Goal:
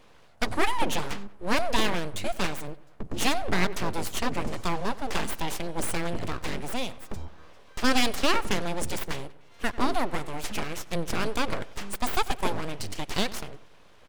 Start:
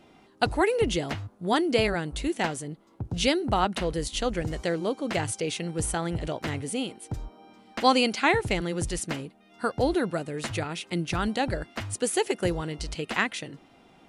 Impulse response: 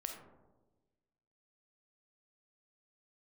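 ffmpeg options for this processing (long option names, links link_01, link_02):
-filter_complex "[0:a]aeval=exprs='abs(val(0))':channel_layout=same,asplit=2[link_01][link_02];[link_02]adelay=94,lowpass=frequency=3100:poles=1,volume=-18.5dB,asplit=2[link_03][link_04];[link_04]adelay=94,lowpass=frequency=3100:poles=1,volume=0.51,asplit=2[link_05][link_06];[link_06]adelay=94,lowpass=frequency=3100:poles=1,volume=0.51,asplit=2[link_07][link_08];[link_08]adelay=94,lowpass=frequency=3100:poles=1,volume=0.51[link_09];[link_01][link_03][link_05][link_07][link_09]amix=inputs=5:normalize=0,alimiter=level_in=10dB:limit=-1dB:release=50:level=0:latency=1,volume=-8dB"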